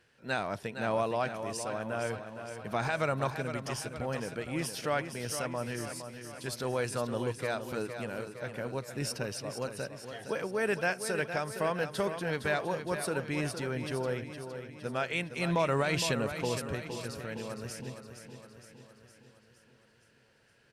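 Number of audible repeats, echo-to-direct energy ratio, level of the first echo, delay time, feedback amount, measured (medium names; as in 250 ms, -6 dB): 6, -7.5 dB, -9.0 dB, 463 ms, 56%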